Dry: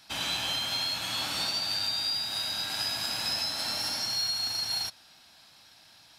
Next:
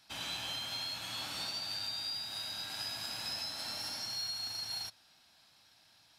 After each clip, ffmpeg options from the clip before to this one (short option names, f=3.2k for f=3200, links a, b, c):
-af "equalizer=f=110:t=o:w=0.31:g=2.5,volume=-8.5dB"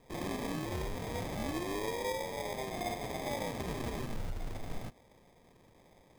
-af "acrusher=samples=31:mix=1:aa=0.000001,volume=3dB"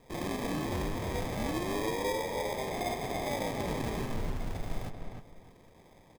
-filter_complex "[0:a]asplit=2[a][b];[b]adelay=306,lowpass=f=2.3k:p=1,volume=-4.5dB,asplit=2[c][d];[d]adelay=306,lowpass=f=2.3k:p=1,volume=0.25,asplit=2[e][f];[f]adelay=306,lowpass=f=2.3k:p=1,volume=0.25[g];[a][c][e][g]amix=inputs=4:normalize=0,volume=2.5dB"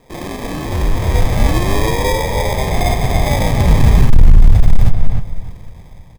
-af "asubboost=boost=10:cutoff=110,asoftclip=type=hard:threshold=-17dB,dynaudnorm=f=370:g=5:m=7dB,volume=9dB"